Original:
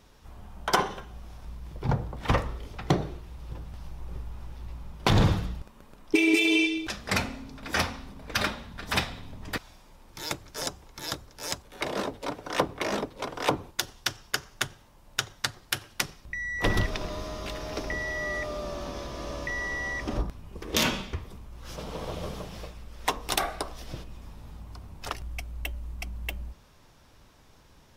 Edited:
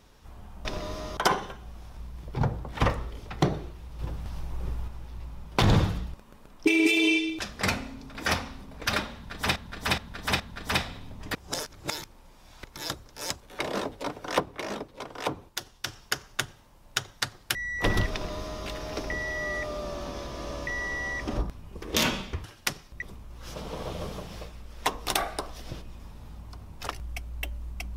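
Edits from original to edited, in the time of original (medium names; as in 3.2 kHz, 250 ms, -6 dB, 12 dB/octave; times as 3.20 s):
3.47–4.36 s: gain +5 dB
8.62–9.04 s: loop, 4 plays
9.57–10.86 s: reverse
12.62–14.09 s: gain -5 dB
15.77–16.35 s: move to 21.24 s
16.93–17.45 s: copy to 0.65 s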